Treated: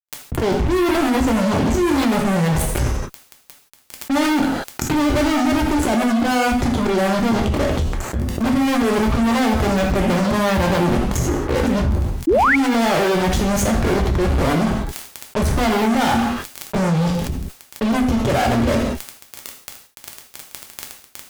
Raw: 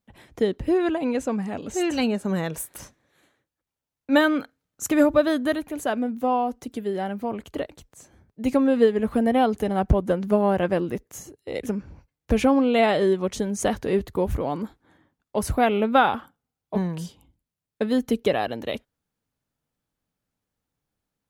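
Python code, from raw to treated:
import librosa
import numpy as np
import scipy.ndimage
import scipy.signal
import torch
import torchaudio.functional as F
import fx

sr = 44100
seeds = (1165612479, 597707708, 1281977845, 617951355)

y = fx.fade_in_head(x, sr, length_s=0.8)
y = fx.auto_swell(y, sr, attack_ms=120.0)
y = fx.riaa(y, sr, side='playback')
y = fx.dmg_crackle(y, sr, seeds[0], per_s=110.0, level_db=-45.0)
y = fx.fuzz(y, sr, gain_db=38.0, gate_db=-41.0)
y = fx.rev_gated(y, sr, seeds[1], gate_ms=200, shape='falling', drr_db=0.5)
y = fx.spec_paint(y, sr, seeds[2], shape='rise', start_s=12.27, length_s=0.29, low_hz=290.0, high_hz=2400.0, level_db=-2.0)
y = fx.env_flatten(y, sr, amount_pct=70)
y = y * librosa.db_to_amplitude(-12.5)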